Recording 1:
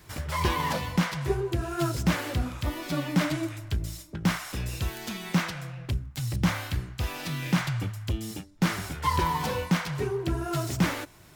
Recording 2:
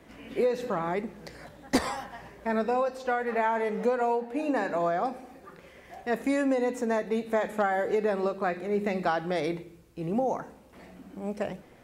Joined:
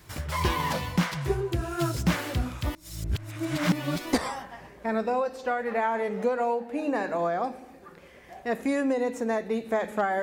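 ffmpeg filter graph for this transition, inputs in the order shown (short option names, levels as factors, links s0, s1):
-filter_complex "[0:a]apad=whole_dur=10.22,atrim=end=10.22,asplit=2[s0][s1];[s0]atrim=end=2.752[s2];[s1]atrim=start=2.748:end=4.132,asetpts=PTS-STARTPTS,areverse[s3];[1:a]atrim=start=1.738:end=7.83[s4];[s2][s3]acrossfade=d=0.004:c1=hsin:c2=hsin[s5];[s5][s4]acrossfade=d=0.004:c1=hsin:c2=hsin"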